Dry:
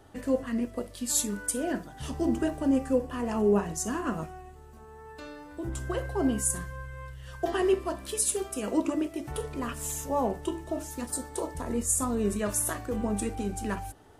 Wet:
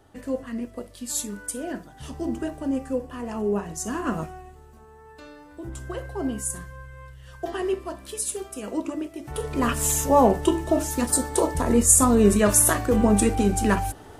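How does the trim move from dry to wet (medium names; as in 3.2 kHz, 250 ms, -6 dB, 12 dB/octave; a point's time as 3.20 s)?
3.63 s -1.5 dB
4.15 s +5 dB
4.99 s -1.5 dB
9.20 s -1.5 dB
9.65 s +11 dB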